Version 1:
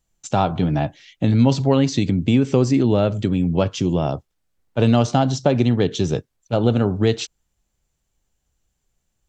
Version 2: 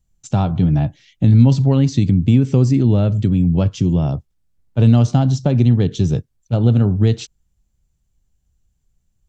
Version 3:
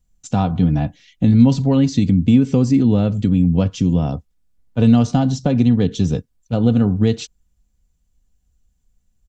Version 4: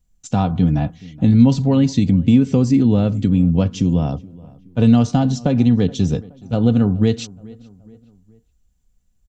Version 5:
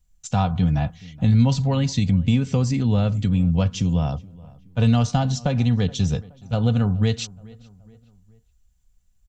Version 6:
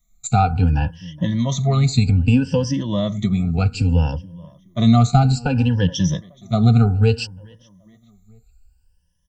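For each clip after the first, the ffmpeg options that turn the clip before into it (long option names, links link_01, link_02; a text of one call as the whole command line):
ffmpeg -i in.wav -af "bass=frequency=250:gain=14,treble=frequency=4000:gain=3,volume=-5.5dB" out.wav
ffmpeg -i in.wav -af "aecho=1:1:4.1:0.47" out.wav
ffmpeg -i in.wav -filter_complex "[0:a]asplit=2[link_01][link_02];[link_02]adelay=423,lowpass=frequency=2200:poles=1,volume=-22dB,asplit=2[link_03][link_04];[link_04]adelay=423,lowpass=frequency=2200:poles=1,volume=0.47,asplit=2[link_05][link_06];[link_06]adelay=423,lowpass=frequency=2200:poles=1,volume=0.47[link_07];[link_01][link_03][link_05][link_07]amix=inputs=4:normalize=0" out.wav
ffmpeg -i in.wav -af "equalizer=frequency=310:width=1.1:gain=-14,volume=1dB" out.wav
ffmpeg -i in.wav -af "afftfilt=real='re*pow(10,23/40*sin(2*PI*(1.2*log(max(b,1)*sr/1024/100)/log(2)-(0.62)*(pts-256)/sr)))':imag='im*pow(10,23/40*sin(2*PI*(1.2*log(max(b,1)*sr/1024/100)/log(2)-(0.62)*(pts-256)/sr)))':win_size=1024:overlap=0.75,volume=-1.5dB" out.wav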